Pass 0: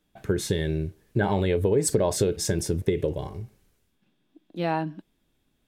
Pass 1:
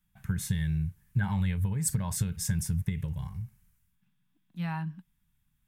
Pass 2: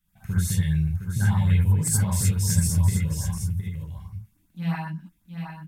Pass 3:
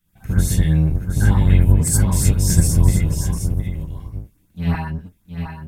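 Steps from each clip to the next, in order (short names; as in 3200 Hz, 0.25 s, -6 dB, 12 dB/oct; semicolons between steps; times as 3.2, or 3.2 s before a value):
EQ curve 180 Hz 0 dB, 360 Hz -30 dB, 640 Hz -23 dB, 910 Hz -8 dB, 1900 Hz -5 dB, 4100 Hz -11 dB, 13000 Hz +2 dB
echo 0.713 s -7.5 dB; non-linear reverb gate 0.1 s rising, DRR -6.5 dB; LFO notch saw up 8 Hz 710–3600 Hz
octaver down 1 oct, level -1 dB; gain +4.5 dB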